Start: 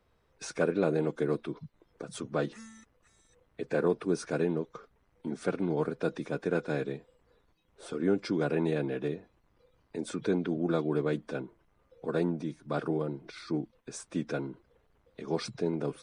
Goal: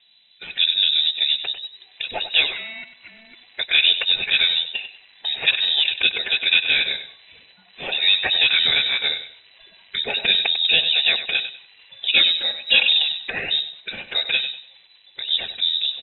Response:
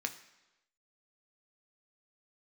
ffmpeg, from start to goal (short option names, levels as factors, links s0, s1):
-filter_complex "[0:a]acrossover=split=1200[s0][s1];[s1]dynaudnorm=f=200:g=17:m=6.31[s2];[s0][s2]amix=inputs=2:normalize=0,lowpass=f=3400:t=q:w=0.5098,lowpass=f=3400:t=q:w=0.6013,lowpass=f=3400:t=q:w=0.9,lowpass=f=3400:t=q:w=2.563,afreqshift=-4000,asettb=1/sr,asplit=3[s3][s4][s5];[s3]atrim=end=12.144[s6];[s4]atrim=start=12.14:end=12.99,asetpts=PTS-STARTPTS,afade=t=in:d=0.004:c=qsin,afade=t=out:st=0.846:d=0.004:c=qsin,aecho=1:1:3.6:0.93,atrim=end_sample=37485[s7];[s5]atrim=start=12.986[s8];[s6][s7]acrossfade=d=0.004:c1=hsin:c2=qsin[s9];[s9][s8]acrossfade=d=0.004:c1=qsin:c2=hsin,asplit=2[s10][s11];[s11]acompressor=threshold=0.00794:ratio=6,volume=1[s12];[s10][s12]amix=inputs=2:normalize=0,equalizer=f=1300:w=2.8:g=-11.5,aecho=1:1:97|194|291:0.266|0.0745|0.0209,volume=2.37"